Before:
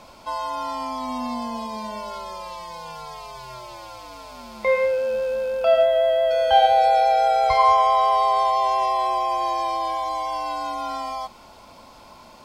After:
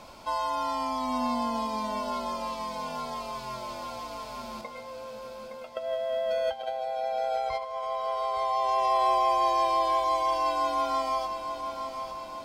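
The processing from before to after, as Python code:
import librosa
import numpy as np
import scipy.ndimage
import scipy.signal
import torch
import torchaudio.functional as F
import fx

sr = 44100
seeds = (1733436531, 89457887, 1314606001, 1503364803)

y = fx.over_compress(x, sr, threshold_db=-22.0, ratio=-0.5)
y = fx.stiff_resonator(y, sr, f0_hz=110.0, decay_s=0.22, stiffness=0.008, at=(4.61, 5.77))
y = fx.echo_feedback(y, sr, ms=865, feedback_pct=56, wet_db=-9.5)
y = y * 10.0 ** (-4.5 / 20.0)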